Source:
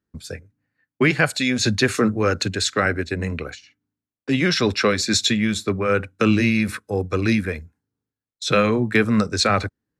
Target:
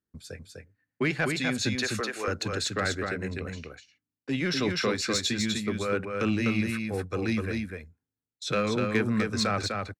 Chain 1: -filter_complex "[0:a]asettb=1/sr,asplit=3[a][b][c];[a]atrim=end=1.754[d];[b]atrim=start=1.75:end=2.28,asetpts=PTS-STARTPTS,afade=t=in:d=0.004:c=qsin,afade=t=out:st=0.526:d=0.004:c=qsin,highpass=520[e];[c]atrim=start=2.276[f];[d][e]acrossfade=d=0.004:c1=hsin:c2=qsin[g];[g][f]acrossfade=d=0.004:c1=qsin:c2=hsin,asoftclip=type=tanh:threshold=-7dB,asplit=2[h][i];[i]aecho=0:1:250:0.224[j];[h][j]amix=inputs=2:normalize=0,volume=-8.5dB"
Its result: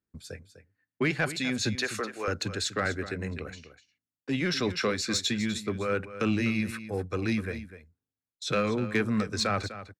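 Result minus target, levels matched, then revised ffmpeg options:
echo-to-direct -9 dB
-filter_complex "[0:a]asettb=1/sr,asplit=3[a][b][c];[a]atrim=end=1.754[d];[b]atrim=start=1.75:end=2.28,asetpts=PTS-STARTPTS,afade=t=in:d=0.004:c=qsin,afade=t=out:st=0.526:d=0.004:c=qsin,highpass=520[e];[c]atrim=start=2.276[f];[d][e]acrossfade=d=0.004:c1=hsin:c2=qsin[g];[g][f]acrossfade=d=0.004:c1=qsin:c2=hsin,asoftclip=type=tanh:threshold=-7dB,asplit=2[h][i];[i]aecho=0:1:250:0.631[j];[h][j]amix=inputs=2:normalize=0,volume=-8.5dB"

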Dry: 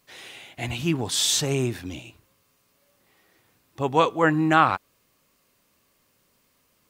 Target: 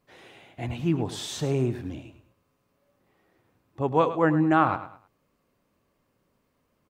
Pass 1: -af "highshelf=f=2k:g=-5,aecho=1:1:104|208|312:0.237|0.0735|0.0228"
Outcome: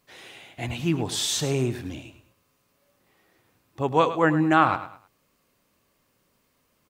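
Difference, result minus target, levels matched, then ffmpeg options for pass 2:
4000 Hz band +7.0 dB
-af "highshelf=f=2k:g=-16.5,aecho=1:1:104|208|312:0.237|0.0735|0.0228"

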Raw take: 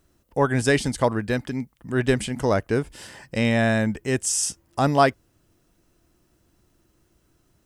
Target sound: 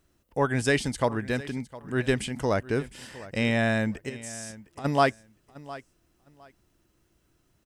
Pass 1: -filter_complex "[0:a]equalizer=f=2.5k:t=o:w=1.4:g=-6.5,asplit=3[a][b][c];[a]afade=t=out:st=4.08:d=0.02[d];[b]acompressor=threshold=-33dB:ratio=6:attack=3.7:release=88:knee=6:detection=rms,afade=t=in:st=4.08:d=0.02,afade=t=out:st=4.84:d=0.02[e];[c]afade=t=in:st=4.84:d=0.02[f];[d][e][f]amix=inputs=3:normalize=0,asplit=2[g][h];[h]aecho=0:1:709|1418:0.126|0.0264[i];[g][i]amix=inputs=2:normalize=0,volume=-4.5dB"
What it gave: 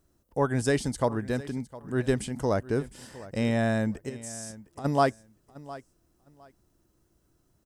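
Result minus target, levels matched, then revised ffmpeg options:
2000 Hz band -5.0 dB
-filter_complex "[0:a]equalizer=f=2.5k:t=o:w=1.4:g=3,asplit=3[a][b][c];[a]afade=t=out:st=4.08:d=0.02[d];[b]acompressor=threshold=-33dB:ratio=6:attack=3.7:release=88:knee=6:detection=rms,afade=t=in:st=4.08:d=0.02,afade=t=out:st=4.84:d=0.02[e];[c]afade=t=in:st=4.84:d=0.02[f];[d][e][f]amix=inputs=3:normalize=0,asplit=2[g][h];[h]aecho=0:1:709|1418:0.126|0.0264[i];[g][i]amix=inputs=2:normalize=0,volume=-4.5dB"

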